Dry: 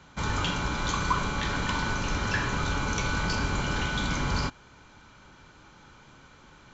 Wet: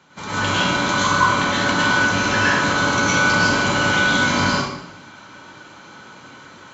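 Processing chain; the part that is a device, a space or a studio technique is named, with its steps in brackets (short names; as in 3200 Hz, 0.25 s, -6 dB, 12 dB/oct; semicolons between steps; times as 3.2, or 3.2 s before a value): far laptop microphone (reverb RT60 0.80 s, pre-delay 97 ms, DRR -7.5 dB; HPF 180 Hz 12 dB/oct; AGC gain up to 4.5 dB)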